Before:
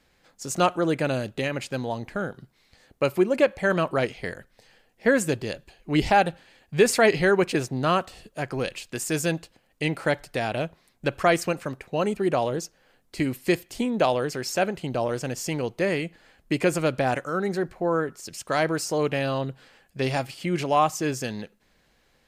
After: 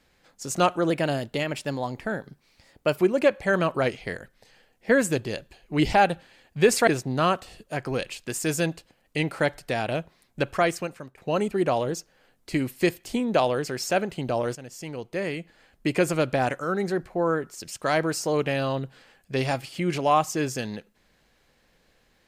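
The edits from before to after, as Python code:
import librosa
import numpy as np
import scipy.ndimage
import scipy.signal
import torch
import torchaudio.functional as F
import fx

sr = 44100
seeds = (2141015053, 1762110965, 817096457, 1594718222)

y = fx.edit(x, sr, fx.speed_span(start_s=0.9, length_s=2.24, speed=1.08),
    fx.cut(start_s=7.04, length_s=0.49),
    fx.fade_out_to(start_s=11.07, length_s=0.76, floor_db=-14.0),
    fx.fade_in_from(start_s=15.21, length_s=1.41, floor_db=-13.0), tone=tone)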